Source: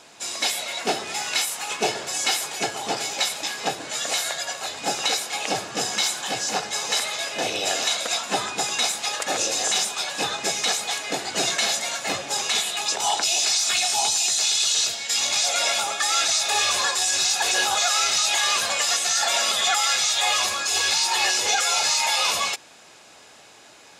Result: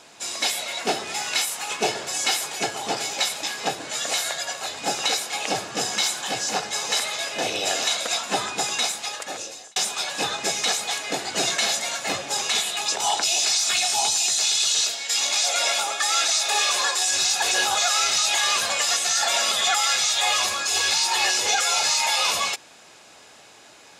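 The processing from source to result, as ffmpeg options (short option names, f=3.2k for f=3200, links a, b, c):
-filter_complex "[0:a]asettb=1/sr,asplit=3[a][b][c];[a]atrim=end=14.814[d];[b]atrim=start=14.81:end=17.11,asetpts=PTS-STARTPTS,afade=t=in:d=0.004:c=qsin,afade=t=out:st=2.296:d=0.004:c=qsin,highpass=270[e];[c]atrim=start=17.106[f];[d][e]acrossfade=d=0.004:c1=hsin:c2=qsin[g];[g][f]acrossfade=d=0.004:c1=qsin:c2=hsin,asplit=2[h][i];[h]atrim=end=9.76,asetpts=PTS-STARTPTS,afade=t=out:st=8.71:d=1.05[j];[i]atrim=start=9.76,asetpts=PTS-STARTPTS,afade=t=in:d=0.004:c=hsin[k];[j][k]concat=n=2:v=0:a=1"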